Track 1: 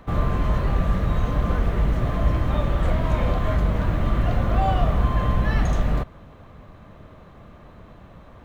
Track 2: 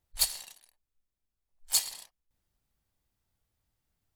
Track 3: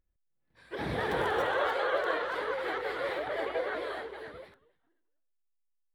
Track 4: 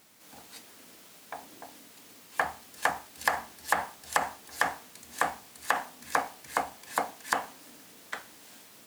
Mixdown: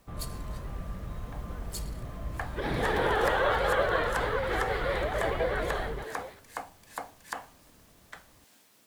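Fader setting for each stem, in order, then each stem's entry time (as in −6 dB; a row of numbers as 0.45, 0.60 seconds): −16.5, −14.5, +3.0, −9.0 decibels; 0.00, 0.00, 1.85, 0.00 seconds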